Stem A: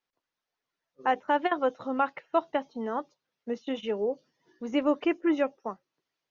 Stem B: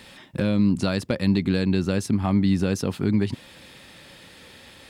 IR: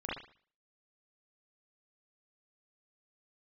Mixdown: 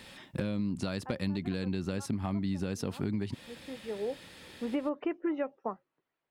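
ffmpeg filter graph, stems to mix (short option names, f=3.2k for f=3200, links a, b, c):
-filter_complex "[0:a]lowpass=2.1k,volume=2dB[a];[1:a]volume=-4dB,asplit=2[b][c];[c]apad=whole_len=277913[d];[a][d]sidechaincompress=threshold=-43dB:ratio=8:attack=16:release=816[e];[e][b]amix=inputs=2:normalize=0,acompressor=threshold=-29dB:ratio=6"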